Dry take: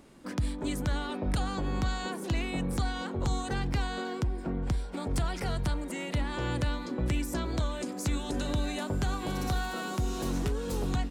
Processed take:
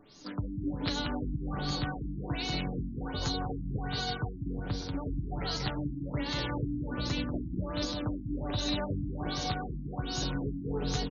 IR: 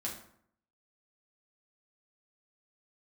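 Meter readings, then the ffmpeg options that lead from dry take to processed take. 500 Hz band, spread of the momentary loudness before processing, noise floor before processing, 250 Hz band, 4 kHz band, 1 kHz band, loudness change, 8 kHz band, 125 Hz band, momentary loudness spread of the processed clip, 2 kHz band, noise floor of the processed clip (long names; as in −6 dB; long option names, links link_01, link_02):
−2.5 dB, 2 LU, −39 dBFS, −1.0 dB, +4.0 dB, −2.5 dB, −2.0 dB, −3.5 dB, −2.5 dB, 4 LU, −3.0 dB, −40 dBFS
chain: -filter_complex "[0:a]aemphasis=mode=production:type=75kf,acrossover=split=4100[link_01][link_02];[link_02]acompressor=threshold=-46dB:ratio=4:attack=1:release=60[link_03];[link_01][link_03]amix=inputs=2:normalize=0,highshelf=frequency=3400:width_type=q:width=1.5:gain=9.5,aecho=1:1:6.8:0.49,aecho=1:1:190|351.5|488.8|605.5|704.6:0.631|0.398|0.251|0.158|0.1,aeval=exprs='(mod(6.31*val(0)+1,2)-1)/6.31':channel_layout=same,flanger=delay=9.5:depth=4.6:regen=58:speed=0.24:shape=sinusoidal,afftfilt=real='re*lt(b*sr/1024,310*pow(7000/310,0.5+0.5*sin(2*PI*1.3*pts/sr)))':imag='im*lt(b*sr/1024,310*pow(7000/310,0.5+0.5*sin(2*PI*1.3*pts/sr)))':win_size=1024:overlap=0.75"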